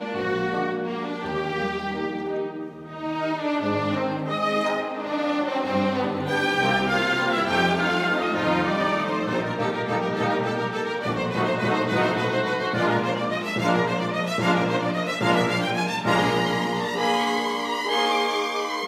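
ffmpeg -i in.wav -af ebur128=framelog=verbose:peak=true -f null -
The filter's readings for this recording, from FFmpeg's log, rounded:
Integrated loudness:
  I:         -23.9 LUFS
  Threshold: -33.9 LUFS
Loudness range:
  LRA:         4.6 LU
  Threshold: -43.8 LUFS
  LRA low:   -26.8 LUFS
  LRA high:  -22.2 LUFS
True peak:
  Peak:       -6.0 dBFS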